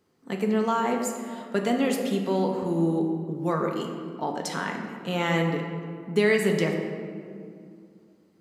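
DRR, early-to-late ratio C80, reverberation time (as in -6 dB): 1.5 dB, 5.5 dB, 2.3 s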